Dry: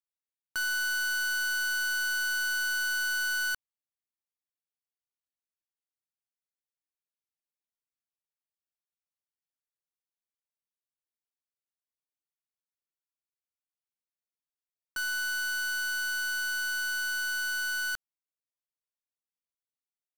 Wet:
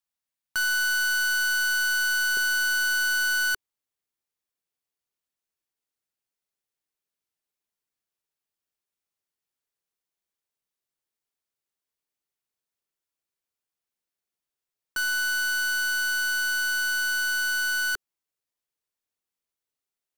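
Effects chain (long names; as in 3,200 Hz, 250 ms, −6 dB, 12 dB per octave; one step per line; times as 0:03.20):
parametric band 400 Hz −10.5 dB 0.42 octaves, from 0:02.37 +4 dB
level +5.5 dB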